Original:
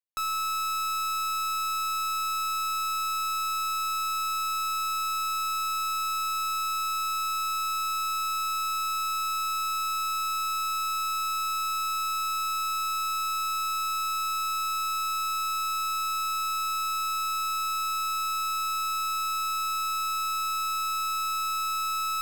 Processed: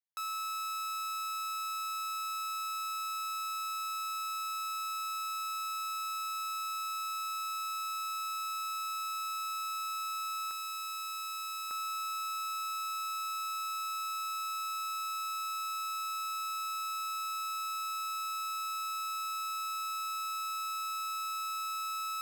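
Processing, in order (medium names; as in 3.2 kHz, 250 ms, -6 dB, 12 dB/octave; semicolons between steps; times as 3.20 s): high-pass 670 Hz 12 dB/octave, from 10.51 s 1.4 kHz, from 11.71 s 480 Hz; trim -7.5 dB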